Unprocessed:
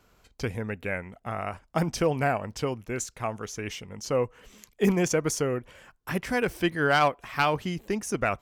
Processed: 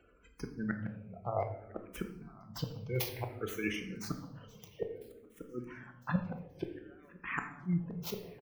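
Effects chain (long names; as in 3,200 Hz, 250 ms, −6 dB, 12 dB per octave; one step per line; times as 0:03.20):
stylus tracing distortion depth 0.44 ms
high-pass filter 42 Hz 12 dB per octave
gate on every frequency bin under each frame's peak −15 dB strong
gate with flip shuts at −20 dBFS, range −36 dB
shaped tremolo saw down 4.4 Hz, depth 45%
repeating echo 1,005 ms, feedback 46%, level −23 dB
rectangular room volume 370 cubic metres, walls mixed, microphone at 0.76 metres
dynamic equaliser 1,900 Hz, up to +4 dB, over −54 dBFS, Q 0.99
frequency shifter mixed with the dry sound −0.58 Hz
level +2 dB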